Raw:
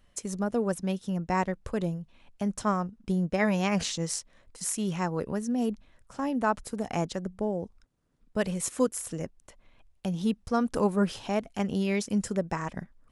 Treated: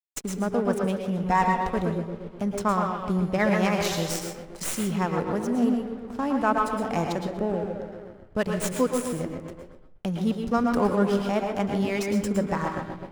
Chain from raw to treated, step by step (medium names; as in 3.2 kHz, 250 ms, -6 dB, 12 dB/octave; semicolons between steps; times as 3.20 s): tracing distortion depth 0.067 ms; tape echo 127 ms, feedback 68%, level -5.5 dB, low-pass 2.3 kHz; in parallel at -2 dB: compression 10:1, threshold -36 dBFS, peak gain reduction 17 dB; on the sum: hysteresis with a dead band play -36.5 dBFS; 1.26–1.69 s: comb 4.3 ms, depth 66%; on a send at -4.5 dB: reverberation RT60 0.35 s, pre-delay 106 ms; on the sum: dynamic bell 1.2 kHz, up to +3 dB, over -35 dBFS, Q 1.1